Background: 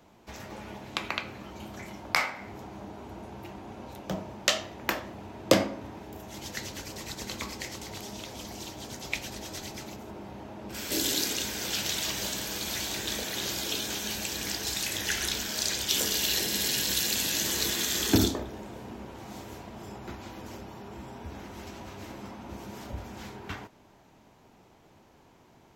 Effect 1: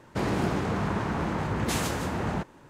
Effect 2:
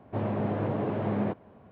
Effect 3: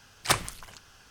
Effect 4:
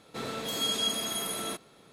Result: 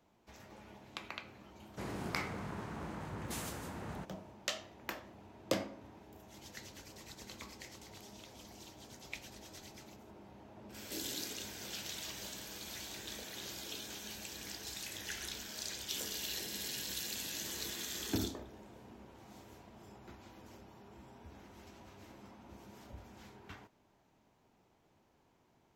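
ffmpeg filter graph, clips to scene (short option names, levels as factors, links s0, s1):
-filter_complex "[0:a]volume=0.224[s0];[1:a]highshelf=f=8900:g=11.5[s1];[2:a]acompressor=threshold=0.0112:ratio=6:attack=3.2:release=140:knee=1:detection=peak[s2];[s1]atrim=end=2.69,asetpts=PTS-STARTPTS,volume=0.178,afade=t=in:d=0.004:c=hsin,afade=t=out:st=2.686:d=0.004:c=hsin,adelay=1620[s3];[s2]atrim=end=1.71,asetpts=PTS-STARTPTS,volume=0.141,afade=t=in:d=0.004:c=hsin,afade=t=out:st=1.706:d=0.004:c=hsin,adelay=10440[s4];[s0][s3][s4]amix=inputs=3:normalize=0"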